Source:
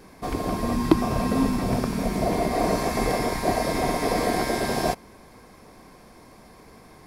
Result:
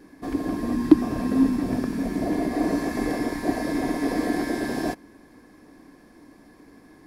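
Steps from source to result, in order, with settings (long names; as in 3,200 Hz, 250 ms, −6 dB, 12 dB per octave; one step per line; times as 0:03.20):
hollow resonant body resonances 290/1,700 Hz, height 16 dB, ringing for 50 ms
level −7.5 dB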